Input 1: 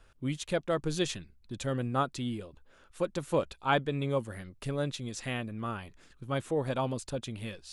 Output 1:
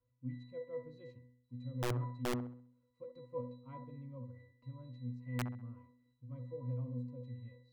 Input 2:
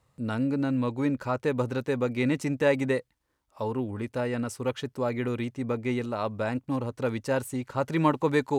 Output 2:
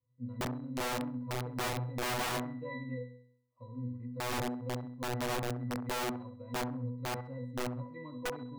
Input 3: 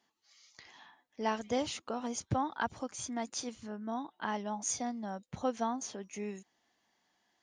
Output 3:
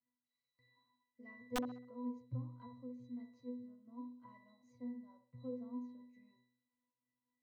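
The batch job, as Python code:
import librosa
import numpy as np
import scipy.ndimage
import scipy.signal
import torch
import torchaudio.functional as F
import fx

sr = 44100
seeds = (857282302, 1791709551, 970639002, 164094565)

p1 = fx.low_shelf(x, sr, hz=370.0, db=4.0)
p2 = fx.cheby_harmonics(p1, sr, harmonics=(6,), levels_db=(-42,), full_scale_db=-8.5)
p3 = fx.octave_resonator(p2, sr, note='B', decay_s=0.69)
p4 = (np.mod(10.0 ** (31.5 / 20.0) * p3 + 1.0, 2.0) - 1.0) / 10.0 ** (31.5 / 20.0)
p5 = p4 + fx.echo_wet_bandpass(p4, sr, ms=66, feedback_pct=35, hz=620.0, wet_db=-7.5, dry=0)
y = p5 * librosa.db_to_amplitude(2.0)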